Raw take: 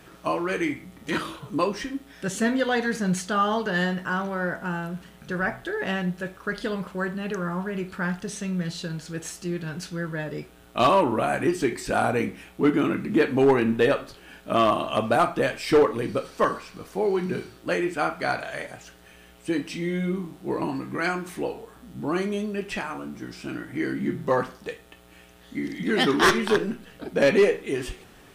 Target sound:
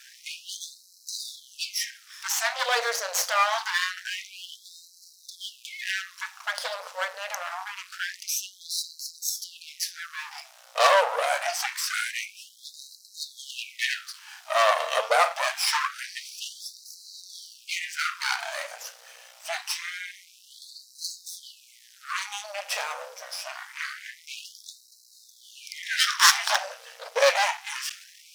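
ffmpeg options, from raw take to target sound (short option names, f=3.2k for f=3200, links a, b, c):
-af "equalizer=f=5.5k:w=1.8:g=13,aeval=exprs='max(val(0),0)':c=same,afftfilt=real='re*gte(b*sr/1024,440*pow(3900/440,0.5+0.5*sin(2*PI*0.25*pts/sr)))':imag='im*gte(b*sr/1024,440*pow(3900/440,0.5+0.5*sin(2*PI*0.25*pts/sr)))':win_size=1024:overlap=0.75,volume=5.5dB"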